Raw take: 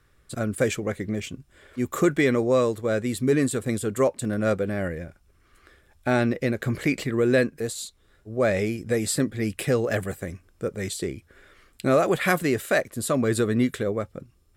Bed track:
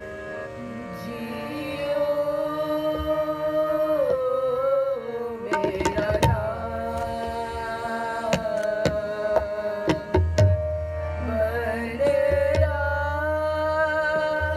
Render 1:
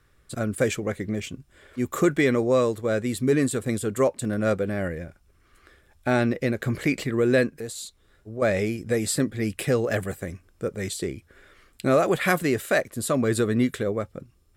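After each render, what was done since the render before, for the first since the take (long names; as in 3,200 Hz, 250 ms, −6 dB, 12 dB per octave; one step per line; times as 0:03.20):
0:07.60–0:08.42: downward compressor 2 to 1, threshold −33 dBFS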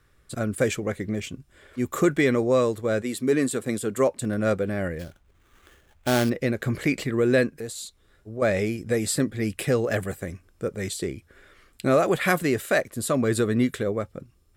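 0:03.01–0:04.09: high-pass filter 240 Hz → 120 Hz
0:04.99–0:06.30: sample-rate reduction 4,900 Hz, jitter 20%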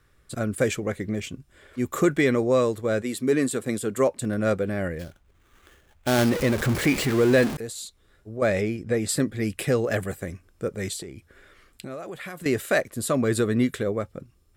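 0:06.18–0:07.57: converter with a step at zero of −25 dBFS
0:08.61–0:09.09: low-pass filter 3,300 Hz 6 dB per octave
0:11.02–0:12.46: downward compressor 5 to 1, threshold −35 dBFS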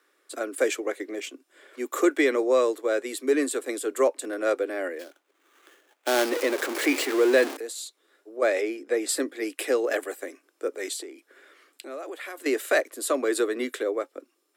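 Butterworth high-pass 280 Hz 72 dB per octave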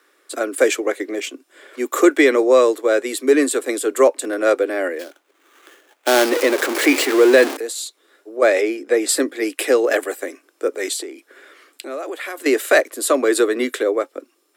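level +8.5 dB
brickwall limiter −1 dBFS, peak gain reduction 1.5 dB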